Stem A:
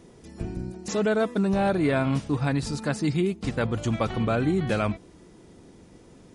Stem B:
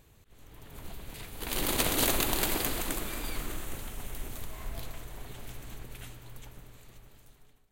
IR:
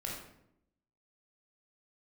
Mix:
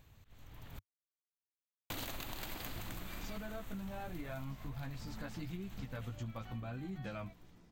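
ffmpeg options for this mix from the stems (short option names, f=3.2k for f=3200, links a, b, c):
-filter_complex "[0:a]flanger=delay=15:depth=2.6:speed=0.86,adelay=2350,volume=-8dB[a];[1:a]volume=-2.5dB,asplit=3[b][c][d];[b]atrim=end=0.79,asetpts=PTS-STARTPTS,afade=t=out:st=0.786:d=0.004:c=hsin[e];[c]atrim=start=0.79:end=1.9,asetpts=PTS-STARTPTS,volume=0[f];[d]atrim=start=1.9,asetpts=PTS-STARTPTS,afade=t=in:d=0.004:c=hsin[g];[e][f][g]concat=n=3:v=0:a=1[h];[a][h]amix=inputs=2:normalize=0,equalizer=f=100:t=o:w=0.67:g=4,equalizer=f=400:t=o:w=0.67:g=-8,equalizer=f=10k:t=o:w=0.67:g=-12,acompressor=threshold=-40dB:ratio=6"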